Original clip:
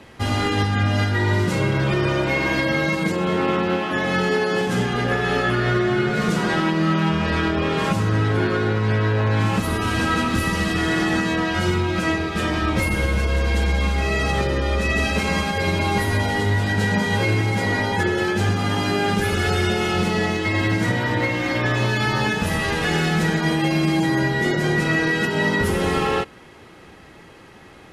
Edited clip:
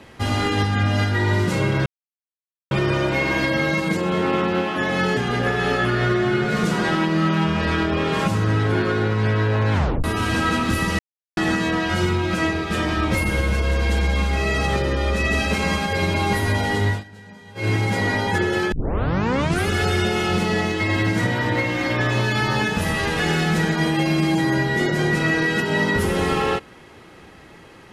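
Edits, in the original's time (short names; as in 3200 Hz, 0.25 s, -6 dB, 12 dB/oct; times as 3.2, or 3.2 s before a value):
1.86 insert silence 0.85 s
4.32–4.82 cut
9.38 tape stop 0.31 s
10.64–11.02 mute
16.54–17.35 dip -22.5 dB, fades 0.15 s
18.37 tape start 0.96 s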